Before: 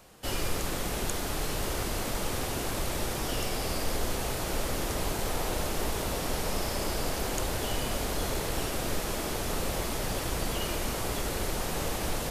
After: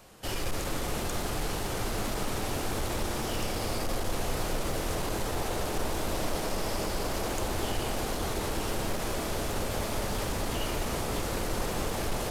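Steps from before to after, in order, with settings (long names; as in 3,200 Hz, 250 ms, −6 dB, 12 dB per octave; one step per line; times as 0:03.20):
in parallel at −1 dB: brickwall limiter −27 dBFS, peak gain reduction 10.5 dB
on the sum: flanger 1.5 Hz, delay 8.9 ms, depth 1.2 ms, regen −68%
hard clipping −26 dBFS, distortion −19 dB
bucket-brigade delay 203 ms, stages 2,048, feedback 72%, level −6 dB
highs frequency-modulated by the lows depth 0.25 ms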